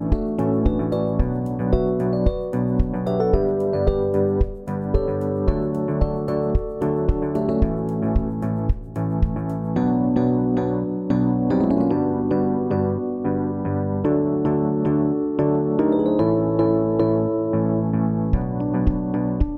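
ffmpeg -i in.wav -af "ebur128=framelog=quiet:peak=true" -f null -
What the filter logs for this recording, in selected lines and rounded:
Integrated loudness:
  I:         -21.7 LUFS
  Threshold: -31.7 LUFS
Loudness range:
  LRA:         2.9 LU
  Threshold: -41.6 LUFS
  LRA low:   -23.0 LUFS
  LRA high:  -20.1 LUFS
True peak:
  Peak:       -5.5 dBFS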